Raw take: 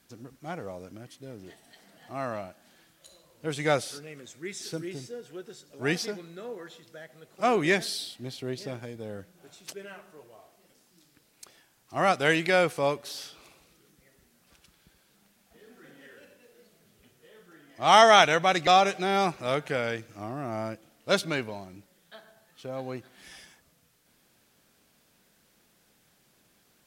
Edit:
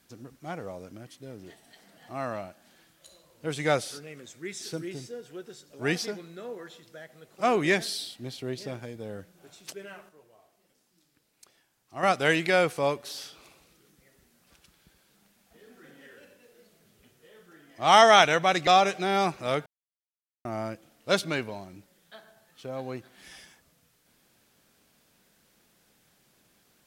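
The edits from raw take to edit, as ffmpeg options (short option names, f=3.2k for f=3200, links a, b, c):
-filter_complex "[0:a]asplit=5[a][b][c][d][e];[a]atrim=end=10.092[f];[b]atrim=start=10.088:end=12.032,asetpts=PTS-STARTPTS,volume=-7dB[g];[c]atrim=start=12.028:end=19.66,asetpts=PTS-STARTPTS,afade=t=out:st=7.628:d=0.004:c=hsin[h];[d]atrim=start=19.66:end=20.45,asetpts=PTS-STARTPTS,volume=0[i];[e]atrim=start=20.45,asetpts=PTS-STARTPTS,afade=t=in:d=0.004:c=hsin[j];[f][g]acrossfade=d=0.004:c1=hsin:c2=hsin[k];[h][i][j]concat=n=3:v=0:a=1[l];[k][l]acrossfade=d=0.004:c1=hsin:c2=hsin"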